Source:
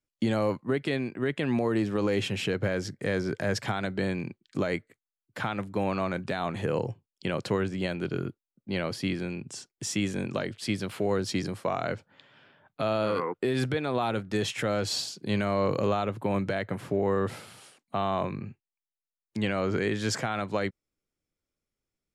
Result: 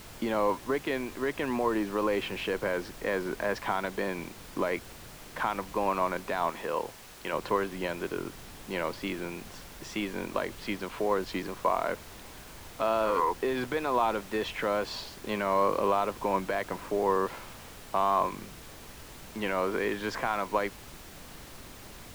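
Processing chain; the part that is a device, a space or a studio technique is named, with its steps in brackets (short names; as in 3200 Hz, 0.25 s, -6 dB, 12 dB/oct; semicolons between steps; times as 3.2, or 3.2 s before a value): horn gramophone (BPF 300–3000 Hz; bell 1000 Hz +11 dB 0.28 oct; wow and flutter; pink noise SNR 15 dB); 6.5–7.33 low shelf 410 Hz -7.5 dB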